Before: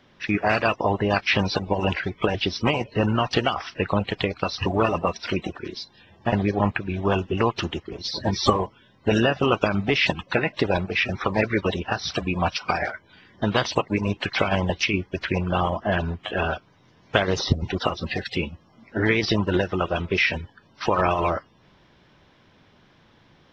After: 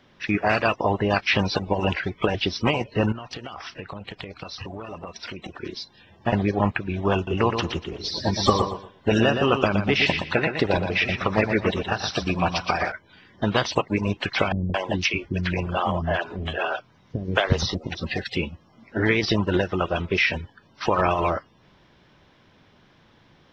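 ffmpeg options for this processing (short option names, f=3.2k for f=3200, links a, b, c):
-filter_complex "[0:a]asettb=1/sr,asplit=3[a][b][c];[a]atrim=end=3.124[d];[b]atrim=start=3.12:end=5.56,asetpts=PTS-STARTPTS,afade=t=in:d=0.004:c=qsin,afade=t=out:st=2.436:d=0.004:c=qsin,acompressor=threshold=-31dB:ratio=20:attack=3.2:release=140:knee=1:detection=peak[e];[c]atrim=start=5.556[f];[d][e]acrossfade=d=0.004:c1=hsin:c2=qsin[g];[g][f]acrossfade=d=0.004:c1=qsin:c2=hsin,asettb=1/sr,asplit=3[h][i][j];[h]atrim=end=7.154[k];[i]atrim=start=7.15:end=12.92,asetpts=PTS-STARTPTS,afade=t=in:d=0.004:c=qsin,afade=t=out:st=5.766:d=0.004:c=qsin,aecho=1:1:119|238|357:0.447|0.107|0.0257,atrim=end_sample=254457[l];[j]atrim=start=12.916[m];[k][l]acrossfade=d=0.004:c1=hsin:c2=qsin[n];[n][m]acrossfade=d=0.004:c1=qsin:c2=hsin,asettb=1/sr,asplit=3[o][p][q];[o]atrim=end=14.524[r];[p]atrim=start=14.52:end=17.95,asetpts=PTS-STARTPTS,afade=t=in:d=0.004:c=qsin,afade=t=out:st=3.426:d=0.004:c=qsin,acrossover=split=350[s][t];[t]adelay=220[u];[s][u]amix=inputs=2:normalize=0,atrim=end_sample=151263[v];[q]atrim=start=17.946[w];[r][v]acrossfade=d=0.004:c1=hsin:c2=qsin[x];[x][w]acrossfade=d=0.004:c1=qsin:c2=hsin"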